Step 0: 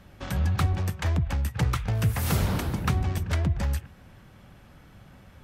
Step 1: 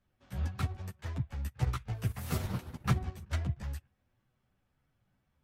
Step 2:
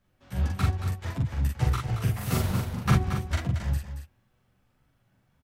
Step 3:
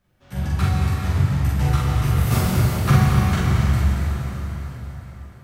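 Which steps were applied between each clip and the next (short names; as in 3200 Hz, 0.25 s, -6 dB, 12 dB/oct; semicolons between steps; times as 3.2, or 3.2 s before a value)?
chorus voices 6, 0.72 Hz, delay 12 ms, depth 4.2 ms; upward expander 2.5:1, over -37 dBFS
doubler 43 ms -2 dB; on a send: echo 0.227 s -9 dB; on the sum: gain +5.5 dB
plate-style reverb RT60 4.8 s, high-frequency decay 0.8×, DRR -4 dB; gain +2.5 dB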